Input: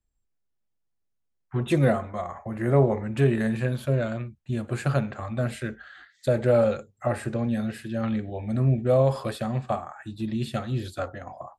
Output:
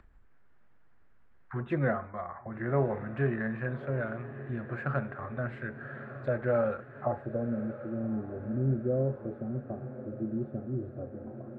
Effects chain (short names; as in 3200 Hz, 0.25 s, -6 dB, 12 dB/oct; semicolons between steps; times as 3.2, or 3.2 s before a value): low-pass sweep 1600 Hz -> 370 Hz, 6.68–7.72; diffused feedback echo 1.157 s, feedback 58%, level -14 dB; upward compressor, threshold -28 dBFS; gain -8.5 dB